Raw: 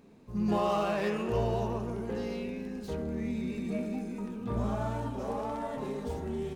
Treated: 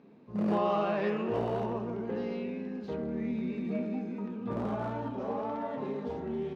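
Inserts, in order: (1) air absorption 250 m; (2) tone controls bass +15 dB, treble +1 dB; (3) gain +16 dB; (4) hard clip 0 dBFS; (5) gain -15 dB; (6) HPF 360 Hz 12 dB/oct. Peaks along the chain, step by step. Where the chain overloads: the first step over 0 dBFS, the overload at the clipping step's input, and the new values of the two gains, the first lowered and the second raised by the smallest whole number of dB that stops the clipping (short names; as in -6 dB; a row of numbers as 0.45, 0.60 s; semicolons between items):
-17.0, -8.5, +7.5, 0.0, -15.0, -18.0 dBFS; step 3, 7.5 dB; step 3 +8 dB, step 5 -7 dB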